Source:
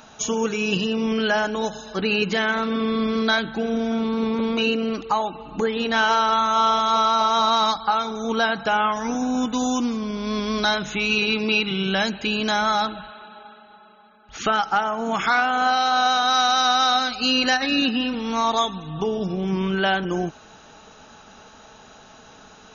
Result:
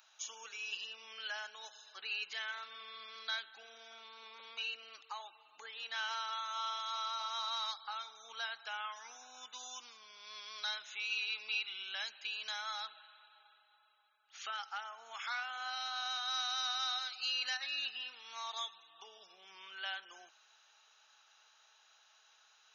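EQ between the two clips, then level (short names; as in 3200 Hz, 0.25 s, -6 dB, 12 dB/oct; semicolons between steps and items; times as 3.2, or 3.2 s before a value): Gaussian blur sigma 1.7 samples; HPF 740 Hz 12 dB/oct; differentiator; -4.5 dB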